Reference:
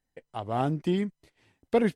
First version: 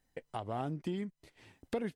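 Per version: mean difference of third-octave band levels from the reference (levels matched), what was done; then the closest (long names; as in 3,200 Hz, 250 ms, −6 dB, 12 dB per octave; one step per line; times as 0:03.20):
4.0 dB: downward compressor 3 to 1, threshold −45 dBFS, peak gain reduction 19.5 dB
level +5.5 dB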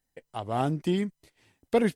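1.5 dB: high-shelf EQ 5,500 Hz +8.5 dB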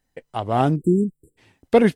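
2.5 dB: time-frequency box erased 0:00.76–0:01.38, 500–7,200 Hz
level +8.5 dB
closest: second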